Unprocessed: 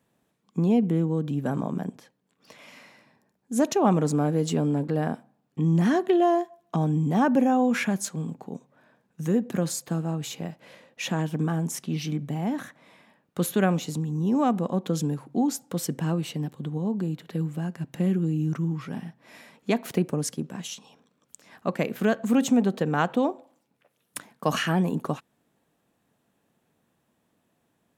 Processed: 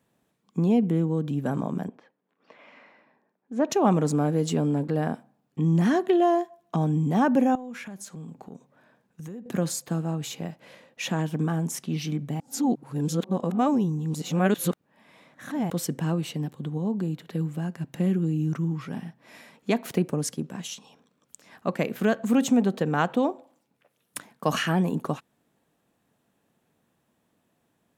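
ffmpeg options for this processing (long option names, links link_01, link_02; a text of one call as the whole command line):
ffmpeg -i in.wav -filter_complex "[0:a]asettb=1/sr,asplit=3[link_01][link_02][link_03];[link_01]atrim=end=1.884[link_04];[link_02]atrim=start=1.88:end=3.7,asetpts=PTS-STARTPTS,afade=type=in:duration=0.004:curve=qsin,afade=type=out:start_time=1.816:duration=0.004:curve=qsin,highpass=270,lowpass=2100[link_05];[link_03]atrim=start=3.696[link_06];[link_04][link_05]acrossfade=duration=0.004:curve1=hsin:curve2=qsin[link_07];[link_07][link_06]acrossfade=duration=0.004:curve1=qsin:curve2=hsin,asettb=1/sr,asplit=3[link_08][link_09][link_10];[link_08]atrim=end=7.554[link_11];[link_09]atrim=start=7.55:end=9.46,asetpts=PTS-STARTPTS,afade=type=in:duration=0.004:curve=qsin,afade=type=out:start_time=1.906:duration=0.004:curve=qsin,acompressor=threshold=-37dB:ratio=5:attack=3.2:release=140:knee=1:detection=peak[link_12];[link_10]atrim=start=9.456[link_13];[link_11][link_12]acrossfade=duration=0.004:curve1=hsin:curve2=qsin[link_14];[link_14][link_13]acrossfade=duration=0.004:curve1=qsin:curve2=hsin,asplit=3[link_15][link_16][link_17];[link_15]atrim=end=12.402[link_18];[link_16]atrim=start=12.398:end=15.702,asetpts=PTS-STARTPTS,areverse[link_19];[link_17]atrim=start=15.698[link_20];[link_18][link_19]acrossfade=duration=0.004:curve1=hsin:curve2=hsin[link_21];[link_21][link_20]acrossfade=duration=0.004:curve1=hsin:curve2=hsin" out.wav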